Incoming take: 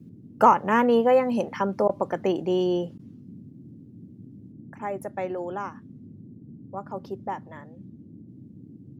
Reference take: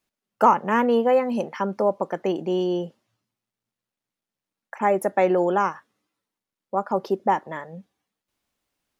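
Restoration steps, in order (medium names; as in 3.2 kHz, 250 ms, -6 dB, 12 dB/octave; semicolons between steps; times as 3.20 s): interpolate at 1.88/2.98 s, 11 ms; noise print and reduce 30 dB; trim 0 dB, from 4.52 s +11 dB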